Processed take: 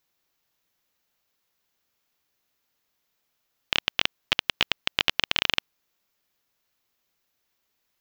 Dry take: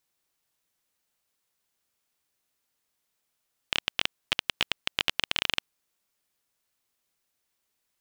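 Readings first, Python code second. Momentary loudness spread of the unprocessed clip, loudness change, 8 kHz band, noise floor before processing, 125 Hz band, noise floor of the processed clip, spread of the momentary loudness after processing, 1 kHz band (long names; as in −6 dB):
4 LU, +3.5 dB, +0.5 dB, −80 dBFS, +4.0 dB, −77 dBFS, 4 LU, +4.0 dB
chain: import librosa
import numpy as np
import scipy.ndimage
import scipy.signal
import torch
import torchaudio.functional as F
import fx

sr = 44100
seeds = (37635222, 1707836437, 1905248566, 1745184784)

y = fx.peak_eq(x, sr, hz=9000.0, db=-13.5, octaves=0.39)
y = y * 10.0 ** (4.0 / 20.0)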